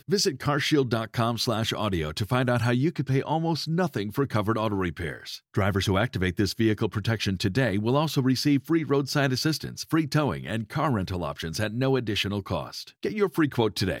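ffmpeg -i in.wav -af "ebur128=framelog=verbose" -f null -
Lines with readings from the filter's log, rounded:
Integrated loudness:
  I:         -26.1 LUFS
  Threshold: -36.2 LUFS
Loudness range:
  LRA:         2.5 LU
  Threshold: -46.2 LUFS
  LRA low:   -27.5 LUFS
  LRA high:  -25.0 LUFS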